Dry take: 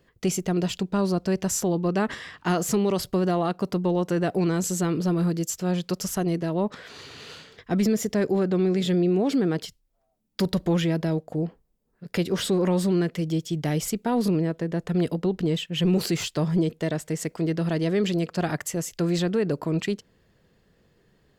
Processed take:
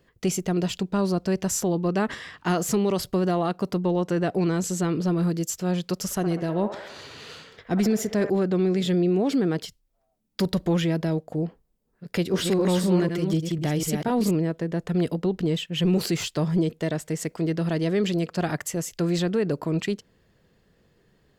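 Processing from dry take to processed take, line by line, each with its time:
3.78–5.23 s: treble shelf 11 kHz -9 dB
5.95–8.30 s: feedback echo behind a band-pass 65 ms, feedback 63%, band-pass 1 kHz, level -7 dB
12.09–14.31 s: chunks repeated in reverse 249 ms, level -5 dB

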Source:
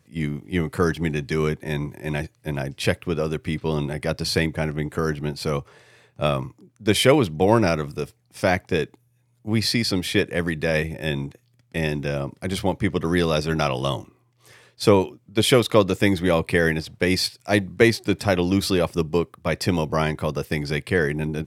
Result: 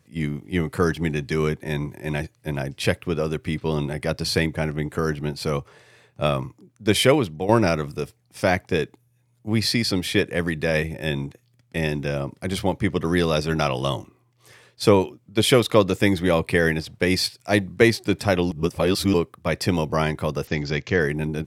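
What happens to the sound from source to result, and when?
7.04–7.49 s: fade out, to -10 dB
18.51–19.14 s: reverse
20.47–21.00 s: careless resampling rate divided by 3×, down none, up filtered

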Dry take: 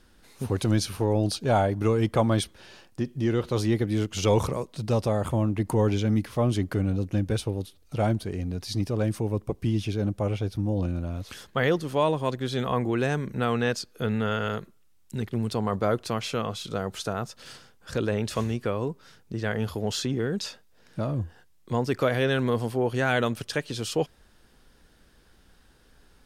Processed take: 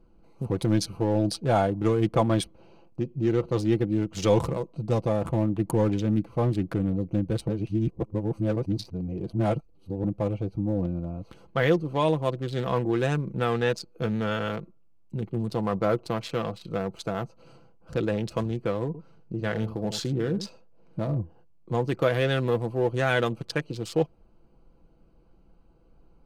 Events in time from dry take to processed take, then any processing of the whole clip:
7.48–10.04 s: reverse
18.86–21.18 s: delay 82 ms -11 dB
whole clip: local Wiener filter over 25 samples; comb 6 ms, depth 46%

